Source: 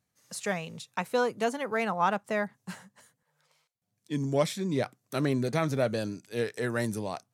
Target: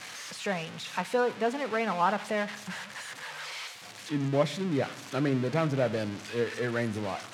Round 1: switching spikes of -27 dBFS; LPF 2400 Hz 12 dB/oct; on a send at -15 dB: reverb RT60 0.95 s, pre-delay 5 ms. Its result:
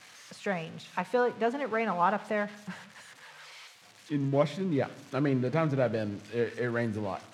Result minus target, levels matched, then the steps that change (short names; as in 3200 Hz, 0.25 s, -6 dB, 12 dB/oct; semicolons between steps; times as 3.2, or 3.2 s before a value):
switching spikes: distortion -10 dB
change: switching spikes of -17 dBFS